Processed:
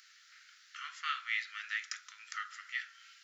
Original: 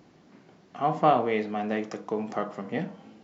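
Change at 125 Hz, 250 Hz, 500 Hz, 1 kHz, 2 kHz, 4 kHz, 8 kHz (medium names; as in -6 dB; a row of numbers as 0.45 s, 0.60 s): under -40 dB, under -40 dB, under -40 dB, -17.0 dB, +2.0 dB, +2.5 dB, no reading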